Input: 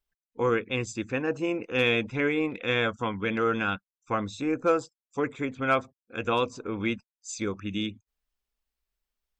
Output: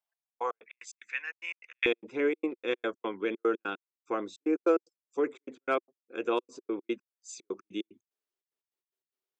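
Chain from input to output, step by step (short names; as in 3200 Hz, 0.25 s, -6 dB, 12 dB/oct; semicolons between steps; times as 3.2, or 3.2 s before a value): step gate "xxx.x.x.x." 148 bpm -60 dB; resonant high-pass 730 Hz, resonance Q 3.9, from 0.66 s 2000 Hz, from 1.86 s 360 Hz; gain -7 dB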